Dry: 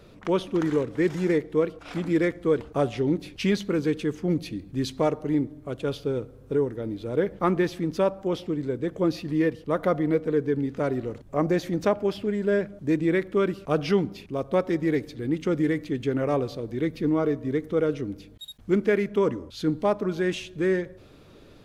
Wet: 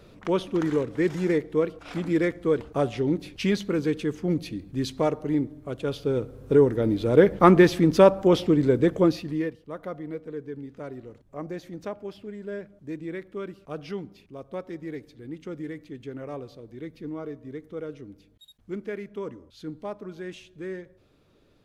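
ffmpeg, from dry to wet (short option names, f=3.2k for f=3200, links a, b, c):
-af "volume=8dB,afade=t=in:st=5.93:d=0.89:silence=0.375837,afade=t=out:st=8.83:d=0.33:silence=0.421697,afade=t=out:st=9.16:d=0.42:silence=0.251189"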